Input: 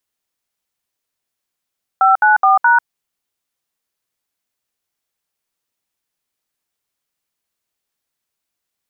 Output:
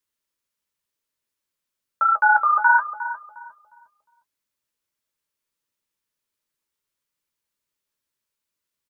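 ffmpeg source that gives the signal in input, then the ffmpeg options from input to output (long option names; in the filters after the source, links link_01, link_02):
-f lavfi -i "aevalsrc='0.299*clip(min(mod(t,0.211),0.144-mod(t,0.211))/0.002,0,1)*(eq(floor(t/0.211),0)*(sin(2*PI*770*mod(t,0.211))+sin(2*PI*1336*mod(t,0.211)))+eq(floor(t/0.211),1)*(sin(2*PI*852*mod(t,0.211))+sin(2*PI*1477*mod(t,0.211)))+eq(floor(t/0.211),2)*(sin(2*PI*770*mod(t,0.211))+sin(2*PI*1209*mod(t,0.211)))+eq(floor(t/0.211),3)*(sin(2*PI*941*mod(t,0.211))+sin(2*PI*1477*mod(t,0.211))))':duration=0.844:sample_rate=44100"
-filter_complex "[0:a]flanger=delay=9.4:depth=7.9:regen=-42:speed=1.4:shape=triangular,asuperstop=centerf=740:order=12:qfactor=4.7,asplit=2[link_01][link_02];[link_02]adelay=357,lowpass=frequency=860:poles=1,volume=-8.5dB,asplit=2[link_03][link_04];[link_04]adelay=357,lowpass=frequency=860:poles=1,volume=0.4,asplit=2[link_05][link_06];[link_06]adelay=357,lowpass=frequency=860:poles=1,volume=0.4,asplit=2[link_07][link_08];[link_08]adelay=357,lowpass=frequency=860:poles=1,volume=0.4[link_09];[link_01][link_03][link_05][link_07][link_09]amix=inputs=5:normalize=0"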